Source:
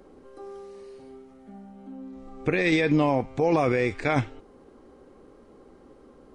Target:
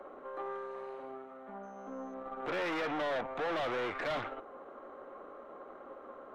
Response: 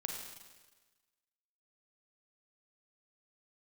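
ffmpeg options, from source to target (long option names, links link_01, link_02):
-filter_complex "[0:a]asettb=1/sr,asplit=3[link_01][link_02][link_03];[link_01]atrim=end=1.634[link_04];[link_02]atrim=start=1.63:end=2.14,asetpts=PTS-STARTPTS,afade=type=in:duration=0.004:curve=qsin,afade=type=out:start_time=0.506:duration=0.004:curve=qsin,aeval=exprs='val(0)+0.000891*sin(2*PI*6200*n/s)':channel_layout=same[link_05];[link_03]atrim=start=2.136[link_06];[link_04][link_05]acrossfade=duration=0.004:curve1=hsin:curve2=qsin[link_07];[link_07][link_06]acrossfade=duration=0.004:curve1=qsin:curve2=hsin,superequalizer=8b=2.24:10b=2:14b=0.355,aeval=exprs='(tanh(63.1*val(0)+0.65)-tanh(0.65))/63.1':channel_layout=same,acrossover=split=220 4400:gain=0.2 1 0.158[link_08][link_09][link_10];[link_08][link_09][link_10]amix=inputs=3:normalize=0,acrossover=split=620|1900[link_11][link_12][link_13];[link_12]aeval=exprs='0.0211*sin(PI/2*2.24*val(0)/0.0211)':channel_layout=same[link_14];[link_11][link_14][link_13]amix=inputs=3:normalize=0"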